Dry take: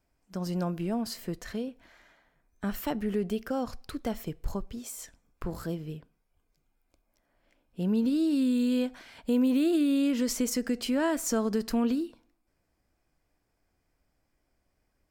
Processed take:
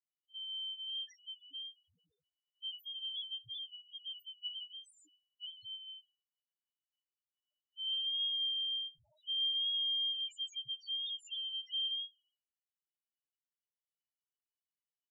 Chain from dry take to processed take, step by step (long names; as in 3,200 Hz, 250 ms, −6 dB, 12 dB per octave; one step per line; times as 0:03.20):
band-splitting scrambler in four parts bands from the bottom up 2413
downward expander −59 dBFS
spectral peaks only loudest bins 1
level −5.5 dB